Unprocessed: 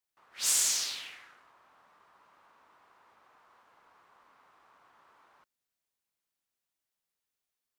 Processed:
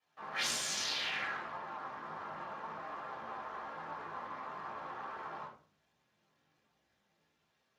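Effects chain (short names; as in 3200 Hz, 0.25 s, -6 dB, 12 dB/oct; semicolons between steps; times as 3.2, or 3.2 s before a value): high shelf 2500 Hz -9 dB; compressor 6:1, threshold -51 dBFS, peak gain reduction 18 dB; chorus voices 4, 0.57 Hz, delay 17 ms, depth 3.6 ms; reverb RT60 0.40 s, pre-delay 4 ms, DRR -7.5 dB; gain +13 dB; Speex 36 kbps 32000 Hz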